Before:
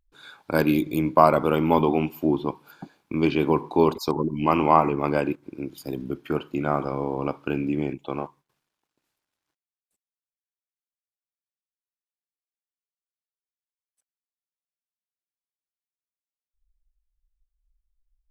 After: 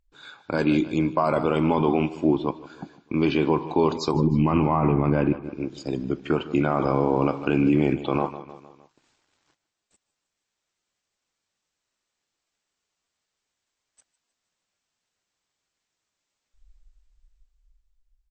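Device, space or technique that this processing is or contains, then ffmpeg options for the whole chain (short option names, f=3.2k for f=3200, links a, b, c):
low-bitrate web radio: -filter_complex "[0:a]asettb=1/sr,asplit=3[a][b][c];[a]atrim=end=4.144[d];[b]atrim=start=4.14:end=5.44,asetpts=PTS-STARTPTS,afade=t=in:d=0.004:c=qsin,afade=t=out:st=1.296:d=0.004:c=qsin,bass=f=250:g=11,treble=f=4k:g=-15[e];[c]atrim=start=5.436[f];[d][e]acrossfade=d=0.004:c1=hsin:c2=qsin[g];[g][f]acrossfade=d=0.004:c1=qsin:c2=hsin,aecho=1:1:154|308|462|616:0.119|0.0594|0.0297|0.0149,dynaudnorm=f=110:g=31:m=16.5dB,alimiter=limit=-12dB:level=0:latency=1:release=27,volume=1.5dB" -ar 22050 -c:a libmp3lame -b:a 32k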